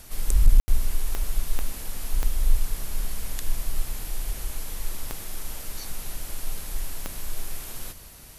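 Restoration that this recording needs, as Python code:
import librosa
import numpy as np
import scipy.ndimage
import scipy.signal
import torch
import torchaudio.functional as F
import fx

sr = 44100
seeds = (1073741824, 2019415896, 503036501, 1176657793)

y = fx.fix_declip(x, sr, threshold_db=-7.0)
y = fx.fix_declick_ar(y, sr, threshold=10.0)
y = fx.fix_ambience(y, sr, seeds[0], print_start_s=7.87, print_end_s=8.37, start_s=0.6, end_s=0.68)
y = fx.fix_echo_inverse(y, sr, delay_ms=157, level_db=-17.5)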